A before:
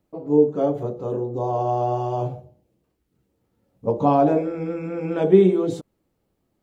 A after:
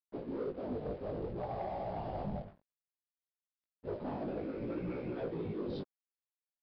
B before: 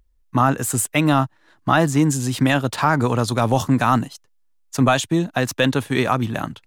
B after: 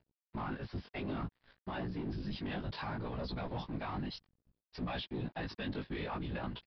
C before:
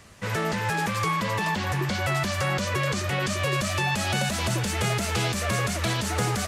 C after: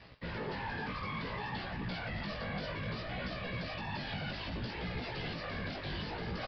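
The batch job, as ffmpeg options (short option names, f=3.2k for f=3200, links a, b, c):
-af "bandreject=f=1.3k:w=8.9,aecho=1:1:6.7:0.41,acontrast=75,alimiter=limit=-10.5dB:level=0:latency=1:release=403,areverse,acompressor=threshold=-27dB:ratio=16,areverse,afftfilt=real='hypot(re,im)*cos(2*PI*random(0))':imag='hypot(re,im)*sin(2*PI*random(1))':win_size=512:overlap=0.75,aeval=exprs='sgn(val(0))*max(abs(val(0))-0.00178,0)':c=same,flanger=delay=16:depth=4.4:speed=0.6,asoftclip=type=tanh:threshold=-33.5dB,aresample=11025,aresample=44100,volume=3dB"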